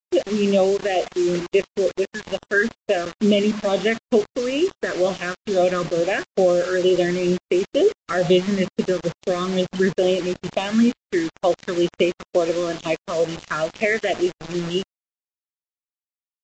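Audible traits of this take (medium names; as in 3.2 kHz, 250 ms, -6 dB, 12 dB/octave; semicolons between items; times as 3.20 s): phasing stages 6, 2.2 Hz, lowest notch 740–1800 Hz; a quantiser's noise floor 6-bit, dither none; Vorbis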